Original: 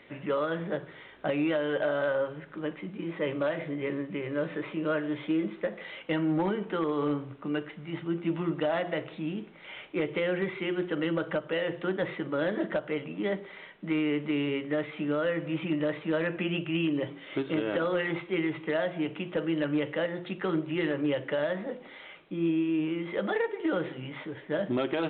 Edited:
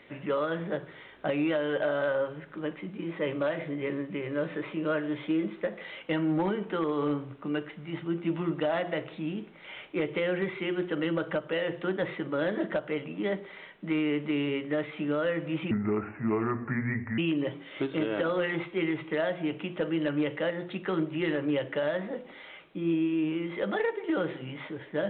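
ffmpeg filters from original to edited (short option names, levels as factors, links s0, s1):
-filter_complex "[0:a]asplit=3[s0][s1][s2];[s0]atrim=end=15.714[s3];[s1]atrim=start=15.71:end=16.74,asetpts=PTS-STARTPTS,asetrate=30870,aresample=44100,atrim=end_sample=64890,asetpts=PTS-STARTPTS[s4];[s2]atrim=start=16.736[s5];[s3][s4]acrossfade=d=0.004:c1=hsin:c2=hsin[s6];[s6][s5]acrossfade=d=0.004:c1=hsin:c2=hsin"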